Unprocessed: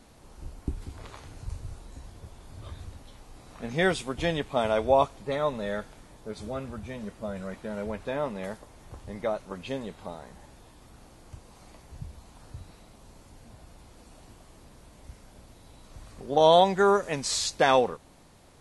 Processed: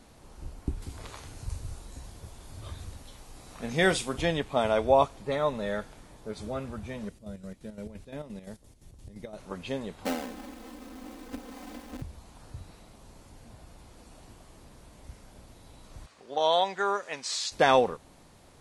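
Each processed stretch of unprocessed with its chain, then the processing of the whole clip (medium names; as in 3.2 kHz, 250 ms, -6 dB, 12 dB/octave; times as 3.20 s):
0.82–4.21 s: treble shelf 4.1 kHz +7 dB + doubling 47 ms -14 dB
7.09–9.38 s: peaking EQ 1.1 kHz -14.5 dB 2.5 oct + square tremolo 5.8 Hz, depth 65%, duty 55%
10.05–12.02 s: square wave that keeps the level + resonant low shelf 190 Hz -10 dB, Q 3 + comb 3.9 ms, depth 98%
16.06–17.52 s: high-pass 1.2 kHz 6 dB/octave + distance through air 62 m
whole clip: none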